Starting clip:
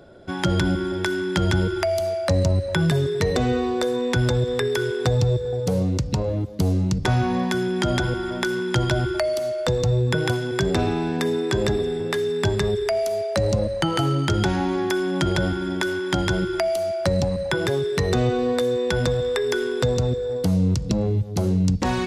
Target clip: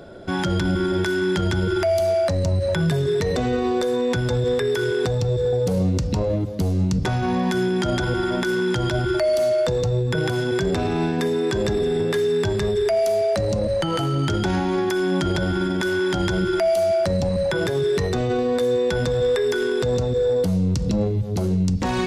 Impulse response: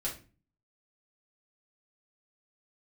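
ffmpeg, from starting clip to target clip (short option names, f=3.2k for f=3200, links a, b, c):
-filter_complex "[0:a]alimiter=limit=-21dB:level=0:latency=1:release=30,asplit=2[a][b];[1:a]atrim=start_sample=2205,asetrate=43659,aresample=44100[c];[b][c]afir=irnorm=-1:irlink=0,volume=-15.5dB[d];[a][d]amix=inputs=2:normalize=0,volume=5.5dB"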